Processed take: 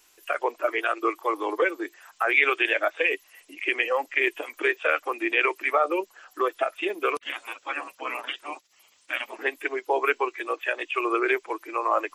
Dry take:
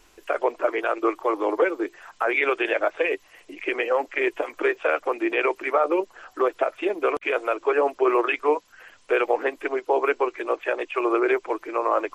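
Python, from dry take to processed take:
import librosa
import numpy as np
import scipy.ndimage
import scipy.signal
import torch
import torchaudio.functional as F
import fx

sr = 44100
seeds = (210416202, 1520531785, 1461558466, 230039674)

y = fx.noise_reduce_blind(x, sr, reduce_db=7)
y = fx.spec_gate(y, sr, threshold_db=-15, keep='weak', at=(7.2, 9.39))
y = fx.tilt_eq(y, sr, slope=3.0)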